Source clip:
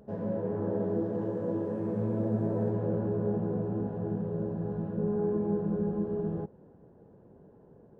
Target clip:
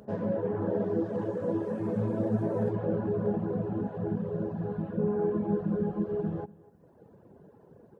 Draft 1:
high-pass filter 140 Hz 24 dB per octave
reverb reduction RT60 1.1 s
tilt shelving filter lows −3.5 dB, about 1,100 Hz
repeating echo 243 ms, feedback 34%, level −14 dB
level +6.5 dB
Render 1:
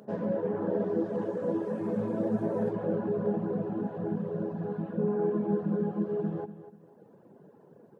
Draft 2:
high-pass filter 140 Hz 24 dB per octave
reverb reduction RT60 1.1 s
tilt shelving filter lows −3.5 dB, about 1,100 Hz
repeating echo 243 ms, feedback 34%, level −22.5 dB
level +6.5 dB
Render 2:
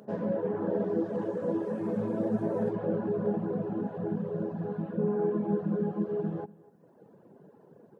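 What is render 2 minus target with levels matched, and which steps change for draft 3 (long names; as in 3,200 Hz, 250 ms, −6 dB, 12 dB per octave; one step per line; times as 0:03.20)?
125 Hz band −2.5 dB
change: high-pass filter 59 Hz 24 dB per octave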